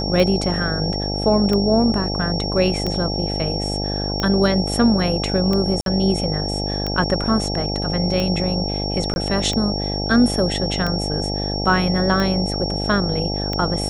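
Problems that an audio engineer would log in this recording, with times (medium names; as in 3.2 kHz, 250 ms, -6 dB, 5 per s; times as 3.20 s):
buzz 50 Hz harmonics 17 -25 dBFS
tick 45 rpm -10 dBFS
whine 5.5 kHz -26 dBFS
5.81–5.86 s: dropout 52 ms
9.14–9.16 s: dropout 21 ms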